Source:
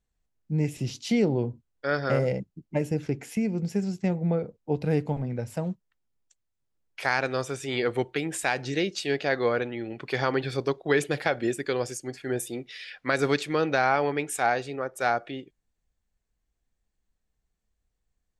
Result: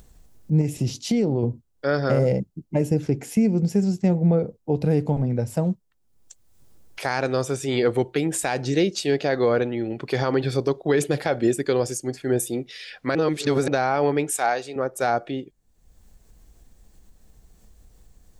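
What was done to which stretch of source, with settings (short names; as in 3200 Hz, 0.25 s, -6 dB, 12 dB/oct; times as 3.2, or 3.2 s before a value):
0.61–1.43 compressor 4:1, threshold -25 dBFS
13.15–13.68 reverse
14.31–14.76 HPF 720 Hz 6 dB/oct
whole clip: bell 2100 Hz -8 dB 2.2 oct; limiter -18.5 dBFS; upward compressor, threshold -42 dBFS; gain +8 dB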